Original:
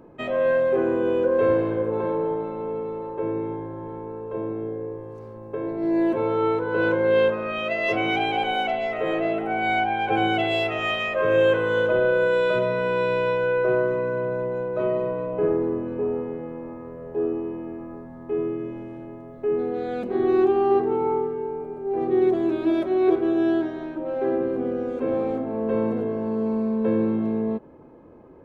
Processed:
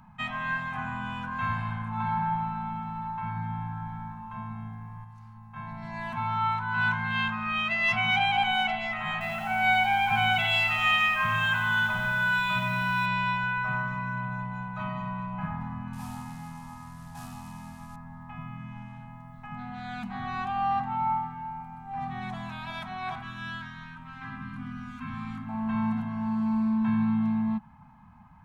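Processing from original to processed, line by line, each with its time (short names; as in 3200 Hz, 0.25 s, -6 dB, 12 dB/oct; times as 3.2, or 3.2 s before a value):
1.93–4.07 reverb throw, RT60 1.4 s, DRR 1.5 dB
5.04–5.56 resonator 100 Hz, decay 0.24 s
9.12–13.06 lo-fi delay 88 ms, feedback 55%, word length 8-bit, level -8 dB
15.93–17.96 CVSD 64 kbps
23.22–25.49 band shelf 640 Hz -15.5 dB 1.1 oct
whole clip: elliptic band-stop 210–820 Hz, stop band 40 dB; gain +2.5 dB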